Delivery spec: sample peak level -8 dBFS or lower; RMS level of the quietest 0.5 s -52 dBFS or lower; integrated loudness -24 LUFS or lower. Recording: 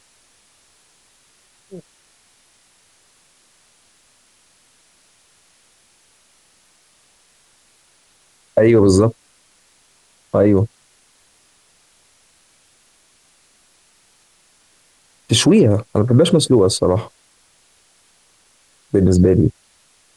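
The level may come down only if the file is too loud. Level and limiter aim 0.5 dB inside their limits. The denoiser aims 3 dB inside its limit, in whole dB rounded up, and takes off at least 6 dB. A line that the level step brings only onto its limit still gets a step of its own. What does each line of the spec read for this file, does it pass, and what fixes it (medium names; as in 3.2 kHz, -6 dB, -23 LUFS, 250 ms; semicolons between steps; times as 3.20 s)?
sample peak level -3.5 dBFS: fail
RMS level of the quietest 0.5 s -56 dBFS: pass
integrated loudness -15.0 LUFS: fail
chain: trim -9.5 dB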